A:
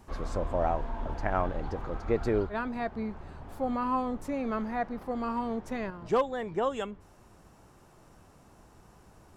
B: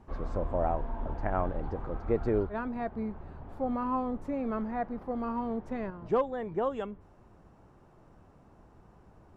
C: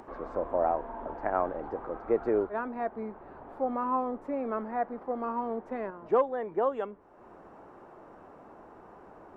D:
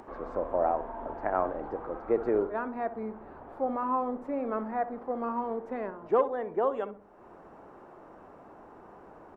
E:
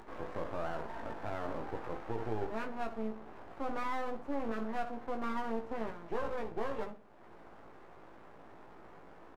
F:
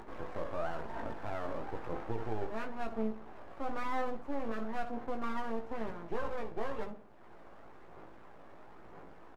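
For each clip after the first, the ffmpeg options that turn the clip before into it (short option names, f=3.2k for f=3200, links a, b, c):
-af "lowpass=f=1.1k:p=1"
-filter_complex "[0:a]acrossover=split=270 2200:gain=0.1 1 0.224[a][b][c];[a][b][c]amix=inputs=3:normalize=0,acompressor=mode=upward:threshold=-45dB:ratio=2.5,volume=3.5dB"
-filter_complex "[0:a]asplit=2[a][b];[b]adelay=64,lowpass=f=970:p=1,volume=-11dB,asplit=2[c][d];[d]adelay=64,lowpass=f=970:p=1,volume=0.47,asplit=2[e][f];[f]adelay=64,lowpass=f=970:p=1,volume=0.47,asplit=2[g][h];[h]adelay=64,lowpass=f=970:p=1,volume=0.47,asplit=2[i][j];[j]adelay=64,lowpass=f=970:p=1,volume=0.47[k];[a][c][e][g][i][k]amix=inputs=6:normalize=0"
-filter_complex "[0:a]alimiter=level_in=0.5dB:limit=-24dB:level=0:latency=1:release=34,volume=-0.5dB,aeval=exprs='max(val(0),0)':c=same,asplit=2[a][b];[b]adelay=18,volume=-4.5dB[c];[a][c]amix=inputs=2:normalize=0,volume=-1.5dB"
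-af "flanger=delay=0:depth=1.8:regen=74:speed=1:shape=sinusoidal,volume=4dB"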